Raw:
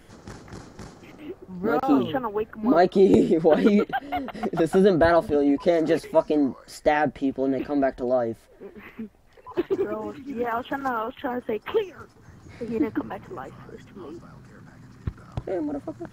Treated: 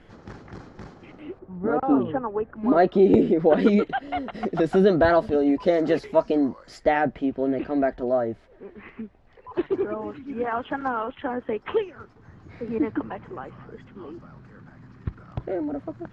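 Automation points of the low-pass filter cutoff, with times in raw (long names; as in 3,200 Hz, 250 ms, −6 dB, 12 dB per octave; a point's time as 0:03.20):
3,400 Hz
from 0:01.39 1,400 Hz
from 0:02.56 2,900 Hz
from 0:03.59 5,100 Hz
from 0:06.84 3,200 Hz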